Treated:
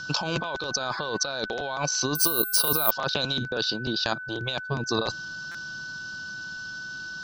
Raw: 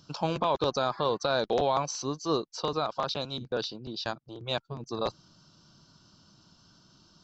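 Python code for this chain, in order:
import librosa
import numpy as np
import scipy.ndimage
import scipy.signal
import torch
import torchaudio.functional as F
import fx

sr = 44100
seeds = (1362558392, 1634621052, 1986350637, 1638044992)

y = scipy.signal.sosfilt(scipy.signal.butter(2, 6600.0, 'lowpass', fs=sr, output='sos'), x)
y = fx.high_shelf(y, sr, hz=2800.0, db=11.5)
y = fx.over_compress(y, sr, threshold_db=-33.0, ratio=-1.0)
y = y + 10.0 ** (-39.0 / 20.0) * np.sin(2.0 * np.pi * 1500.0 * np.arange(len(y)) / sr)
y = fx.resample_bad(y, sr, factor=3, down='filtered', up='zero_stuff', at=(2.15, 2.91))
y = fx.buffer_glitch(y, sr, at_s=(5.51,), block=256, repeats=5)
y = F.gain(torch.from_numpy(y), 4.5).numpy()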